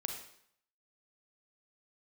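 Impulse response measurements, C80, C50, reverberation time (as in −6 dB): 8.0 dB, 5.0 dB, 0.65 s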